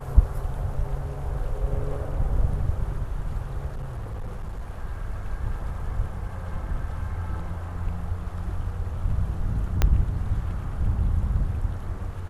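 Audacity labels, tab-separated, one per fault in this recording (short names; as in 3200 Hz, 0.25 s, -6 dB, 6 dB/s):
3.680000	4.650000	clipped -28 dBFS
9.820000	9.820000	pop -7 dBFS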